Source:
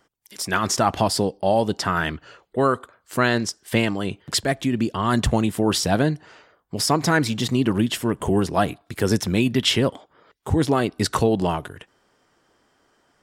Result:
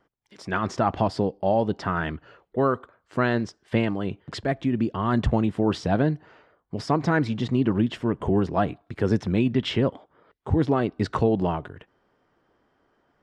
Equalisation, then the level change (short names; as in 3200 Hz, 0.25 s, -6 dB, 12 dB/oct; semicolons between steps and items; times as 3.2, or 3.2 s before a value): tape spacing loss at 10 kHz 28 dB; -1.0 dB